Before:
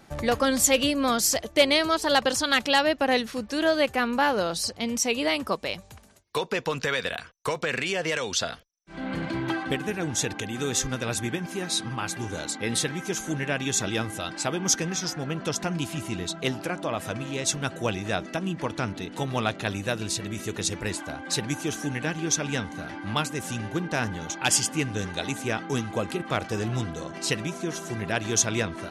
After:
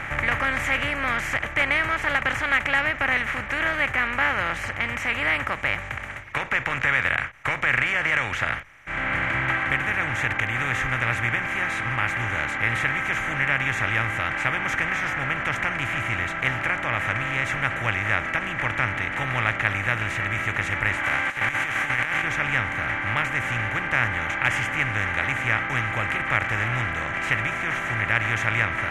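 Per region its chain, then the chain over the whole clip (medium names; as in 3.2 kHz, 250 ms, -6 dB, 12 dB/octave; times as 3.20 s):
21.03–22.22 s: formants flattened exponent 0.6 + high-pass 540 Hz 6 dB/octave + compressor with a negative ratio -37 dBFS, ratio -0.5
whole clip: spectral levelling over time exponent 0.4; FFT filter 120 Hz 0 dB, 180 Hz -13 dB, 260 Hz -13 dB, 500 Hz -17 dB, 2.1 kHz +4 dB, 4.4 kHz -27 dB, 7.6 kHz -24 dB; endings held to a fixed fall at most 270 dB/s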